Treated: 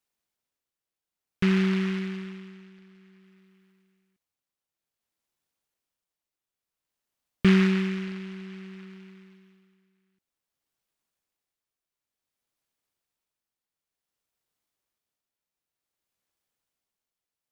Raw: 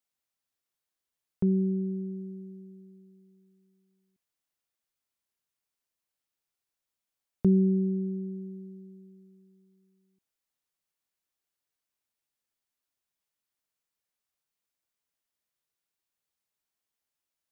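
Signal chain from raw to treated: tremolo 0.55 Hz, depth 53%; delay time shaken by noise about 1.9 kHz, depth 0.18 ms; trim +4 dB

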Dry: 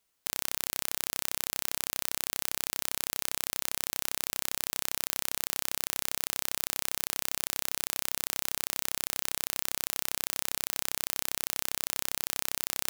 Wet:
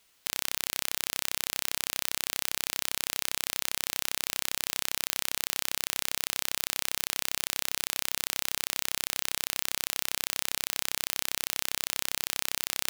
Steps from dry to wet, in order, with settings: peaking EQ 3 kHz +5.5 dB 2 oct; peak limiter -11 dBFS, peak gain reduction 9.5 dB; trim +9 dB

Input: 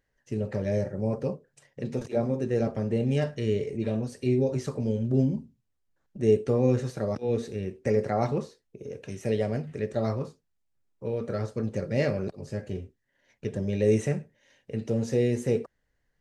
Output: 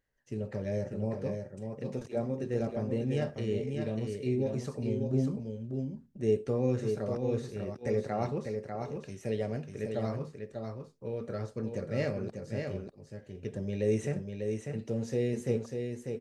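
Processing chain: delay 595 ms -5.5 dB; trim -6 dB

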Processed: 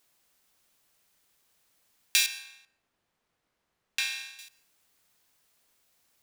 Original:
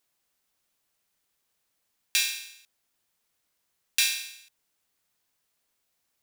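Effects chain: 2.26–4.39 s: low-pass 1.3 kHz 6 dB/octave; in parallel at +3 dB: compression, threshold -37 dBFS, peak gain reduction 15.5 dB; on the sum: plate-style reverb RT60 0.74 s, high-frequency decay 0.55×, pre-delay 105 ms, DRR 19.5 dB; trim -1 dB

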